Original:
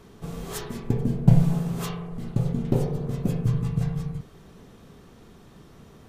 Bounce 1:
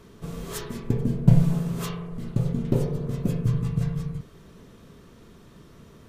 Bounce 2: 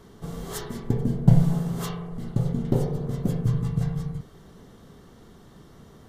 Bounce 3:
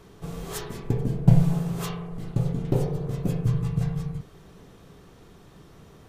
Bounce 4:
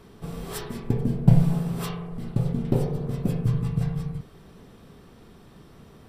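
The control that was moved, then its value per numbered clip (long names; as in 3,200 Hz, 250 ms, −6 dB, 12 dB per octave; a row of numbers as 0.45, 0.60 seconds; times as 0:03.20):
notch filter, centre frequency: 780, 2,500, 230, 6,600 Hertz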